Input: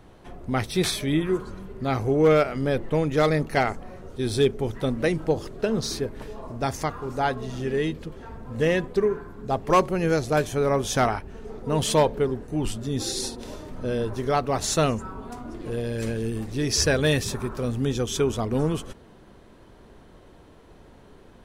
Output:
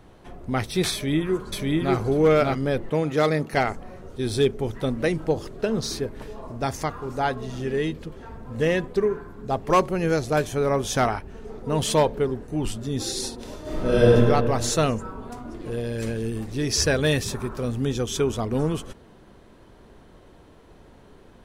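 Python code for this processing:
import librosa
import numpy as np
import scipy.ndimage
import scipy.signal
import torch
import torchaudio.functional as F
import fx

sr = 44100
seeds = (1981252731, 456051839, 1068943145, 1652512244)

y = fx.echo_throw(x, sr, start_s=0.93, length_s=1.02, ms=590, feedback_pct=10, wet_db=-0.5)
y = fx.highpass(y, sr, hz=120.0, slope=12, at=(2.9, 3.53))
y = fx.reverb_throw(y, sr, start_s=13.61, length_s=0.52, rt60_s=2.0, drr_db=-11.0)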